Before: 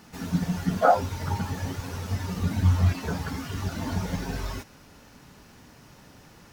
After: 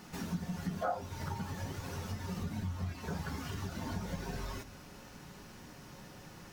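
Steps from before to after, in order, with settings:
downward compressor 3 to 1, threshold −37 dBFS, peak gain reduction 17.5 dB
on a send: convolution reverb RT60 0.40 s, pre-delay 5 ms, DRR 8.5 dB
on the sum: level −1 dB

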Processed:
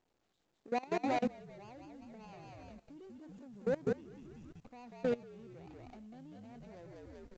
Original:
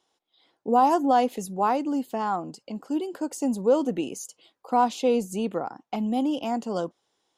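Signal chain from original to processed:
running median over 41 samples
0:02.26–0:02.76: dynamic equaliser 290 Hz, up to −7 dB, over −49 dBFS, Q 1
on a send: echo with shifted repeats 192 ms, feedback 46%, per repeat −56 Hz, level −3 dB
on the sum: output level in coarse steps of 22 dB
0:00.68–0:01.23: low-shelf EQ 160 Hz −11.5 dB
level −8 dB
mu-law 128 kbit/s 16,000 Hz

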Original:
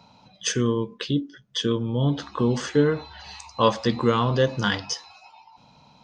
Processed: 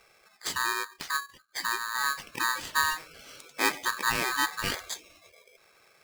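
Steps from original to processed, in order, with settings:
spectral magnitudes quantised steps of 30 dB
ring modulator with a square carrier 1,400 Hz
level −6.5 dB

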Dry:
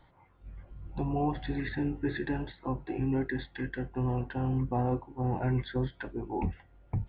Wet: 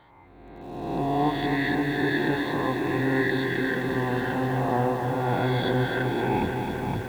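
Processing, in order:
peak hold with a rise ahead of every peak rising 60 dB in 1.49 s
high-pass filter 260 Hz 6 dB per octave
on a send at −19.5 dB: convolution reverb RT60 1.1 s, pre-delay 6 ms
on the sum: feedback echo at a low word length 260 ms, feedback 80%, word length 9 bits, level −6 dB
level +5.5 dB

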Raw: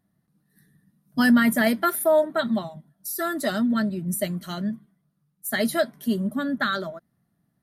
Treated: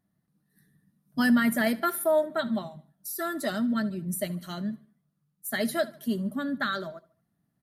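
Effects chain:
repeating echo 74 ms, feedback 40%, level −20 dB
level −4.5 dB

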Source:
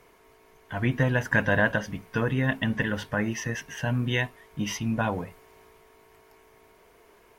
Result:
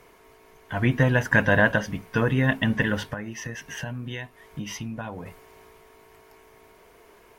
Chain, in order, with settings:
0:03.13–0:05.26: downward compressor 10 to 1, threshold −34 dBFS, peak gain reduction 13 dB
level +3.5 dB

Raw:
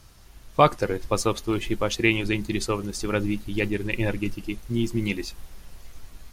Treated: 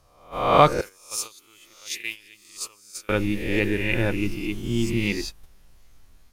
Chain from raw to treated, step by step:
peak hold with a rise ahead of every peak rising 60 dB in 0.83 s
0:00.81–0:03.09: first-order pre-emphasis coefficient 0.97
noise gate −31 dBFS, range −13 dB

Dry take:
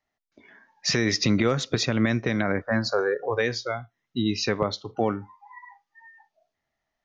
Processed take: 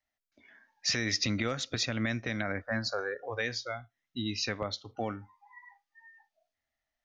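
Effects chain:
graphic EQ with 15 bands 160 Hz −12 dB, 400 Hz −10 dB, 1,000 Hz −7 dB
level −4 dB

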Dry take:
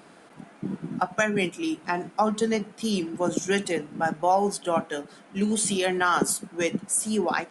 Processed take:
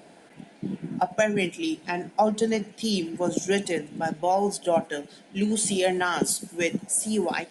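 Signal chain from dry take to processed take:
parametric band 1,200 Hz −14.5 dB 0.49 octaves
delay with a high-pass on its return 100 ms, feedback 55%, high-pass 5,200 Hz, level −20 dB
auto-filter bell 0.86 Hz 600–4,300 Hz +6 dB

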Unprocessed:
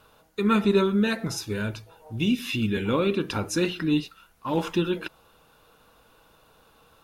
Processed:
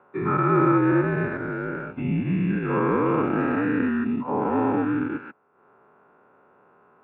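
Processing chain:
every bin's largest magnitude spread in time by 480 ms
single-sideband voice off tune −62 Hz 220–2,000 Hz
transient designer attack +2 dB, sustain −8 dB
level −3.5 dB

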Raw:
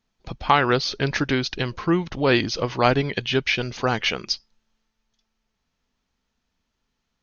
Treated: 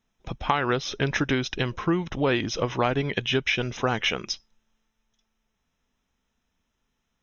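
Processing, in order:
downward compressor 6 to 1, threshold −19 dBFS, peak gain reduction 8 dB
Butterworth band-reject 4,500 Hz, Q 4.1

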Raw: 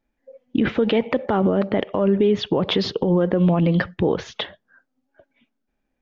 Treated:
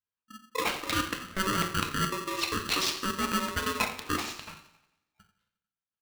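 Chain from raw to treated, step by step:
noise gate −48 dBFS, range −19 dB
high-pass filter 590 Hz 12 dB per octave
reversed playback
downward compressor, threshold −26 dBFS, peak gain reduction 7.5 dB
reversed playback
gate pattern "xxx.x.xxxx.x" 198 BPM −24 dB
on a send: repeating echo 89 ms, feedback 57%, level −17 dB
on the sum: coupled-rooms reverb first 0.6 s, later 1.5 s, from −24 dB, DRR 2.5 dB
ring modulator with a square carrier 760 Hz

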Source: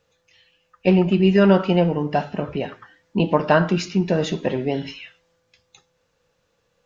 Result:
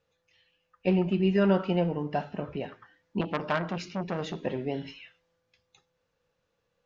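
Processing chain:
high-frequency loss of the air 66 metres
0:03.21–0:04.39: saturating transformer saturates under 1,500 Hz
level −8.5 dB

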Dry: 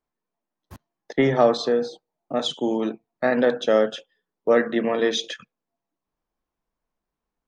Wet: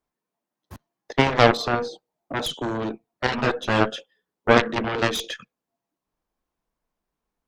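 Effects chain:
harmonic generator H 2 −6 dB, 7 −10 dB, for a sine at −5 dBFS
0:03.27–0:03.81: string-ensemble chorus

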